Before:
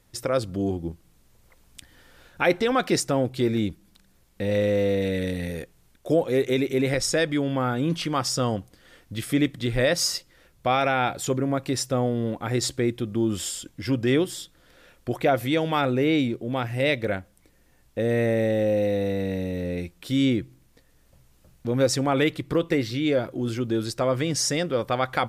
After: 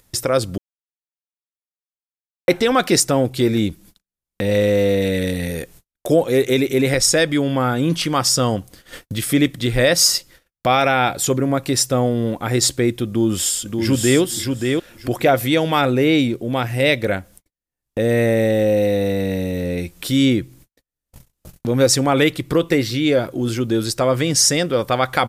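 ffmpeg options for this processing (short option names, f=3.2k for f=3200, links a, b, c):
-filter_complex "[0:a]asplit=2[a][b];[b]afade=t=in:st=13.06:d=0.01,afade=t=out:st=14.21:d=0.01,aecho=0:1:580|1160|1740:0.595662|0.0893493|0.0134024[c];[a][c]amix=inputs=2:normalize=0,asplit=3[d][e][f];[d]atrim=end=0.58,asetpts=PTS-STARTPTS,afade=t=out:st=0.576:d=0.004:c=hsin[g];[e]atrim=start=0.58:end=2.48,asetpts=PTS-STARTPTS,volume=0[h];[f]atrim=start=2.48,asetpts=PTS-STARTPTS,afade=t=in:d=0.004:c=hsin[i];[g][h][i]concat=n=3:v=0:a=1,agate=range=-55dB:threshold=-51dB:ratio=16:detection=peak,highshelf=f=5.7k:g=8.5,acompressor=mode=upward:threshold=-28dB:ratio=2.5,volume=6dB"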